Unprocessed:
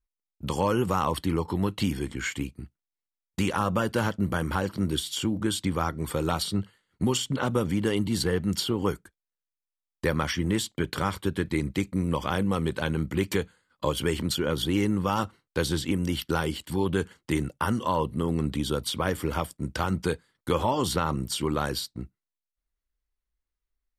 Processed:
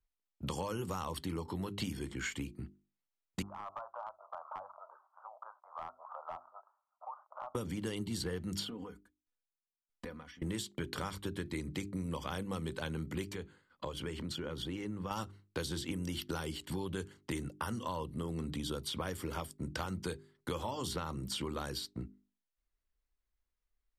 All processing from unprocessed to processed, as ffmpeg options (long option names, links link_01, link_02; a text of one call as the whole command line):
ffmpeg -i in.wav -filter_complex "[0:a]asettb=1/sr,asplit=3[link_01][link_02][link_03];[link_01]atrim=end=3.424[link_04];[link_02]atrim=start=3.42:end=7.55,asetpts=PTS-STARTPTS,afade=type=in:duration=0.004:curve=qsin,afade=type=out:start_time=4.126:duration=0.004:curve=qsin,asuperpass=centerf=890:order=12:qfactor=1.3,aeval=exprs='clip(val(0),-1,0.0531)':channel_layout=same,acompressor=threshold=-41dB:ratio=3:attack=3.2:release=140:knee=1:detection=peak[link_05];[link_03]atrim=start=7.546[link_06];[link_04][link_05]acrossfade=duration=0.004:curve1=hsin:curve2=qsin[link_07];[link_07][link_06]acrossfade=duration=0.004:curve1=qsin:curve2=hsin,asettb=1/sr,asplit=3[link_08][link_09][link_10];[link_08]atrim=end=8.644[link_11];[link_09]atrim=start=8.64:end=10.42,asetpts=PTS-STARTPTS,afade=type=in:duration=0.004:curve=qsin,afade=type=out:start_time=1.776:duration=0.004:curve=qsin,acompressor=threshold=-33dB:ratio=10:attack=3.2:release=140:knee=1:detection=peak,aecho=1:1:4.1:0.7,atrim=end_sample=78498,aeval=exprs='val(0)*pow(10,-24*if(lt(mod(1.6*n/s,1),2*abs(1.6)/1000),1-mod(1.6*n/s,1)/(2*abs(1.6)/1000),(mod(1.6*n/s,1)-2*abs(1.6)/1000)/(1-2*abs(1.6)/1000))/20)':channel_layout=same[link_12];[link_10]atrim=start=10.416[link_13];[link_11][link_12]acrossfade=duration=0.004:curve1=hsin:curve2=qsin[link_14];[link_14][link_13]acrossfade=duration=0.004:curve1=qsin:curve2=hsin,asettb=1/sr,asplit=3[link_15][link_16][link_17];[link_15]atrim=end=13.304[link_18];[link_16]atrim=start=13.3:end=15.11,asetpts=PTS-STARTPTS,afade=type=in:duration=0.004:curve=qsin,afade=type=out:start_time=1.806:duration=0.004:curve=qsin,highshelf=frequency=12000:gain=-9.5,acompressor=threshold=-45dB:ratio=1.5:attack=3.2:release=140:knee=1:detection=peak[link_19];[link_17]atrim=start=15.106[link_20];[link_18][link_19]acrossfade=duration=0.004:curve1=hsin:curve2=qsin[link_21];[link_21][link_20]acrossfade=duration=0.004:curve1=qsin:curve2=hsin,highshelf=frequency=5600:gain=-9,bandreject=frequency=50:width_type=h:width=6,bandreject=frequency=100:width_type=h:width=6,bandreject=frequency=150:width_type=h:width=6,bandreject=frequency=200:width_type=h:width=6,bandreject=frequency=250:width_type=h:width=6,bandreject=frequency=300:width_type=h:width=6,bandreject=frequency=350:width_type=h:width=6,bandreject=frequency=400:width_type=h:width=6,acrossover=split=91|4200[link_22][link_23][link_24];[link_22]acompressor=threshold=-50dB:ratio=4[link_25];[link_23]acompressor=threshold=-38dB:ratio=4[link_26];[link_24]acompressor=threshold=-41dB:ratio=4[link_27];[link_25][link_26][link_27]amix=inputs=3:normalize=0" out.wav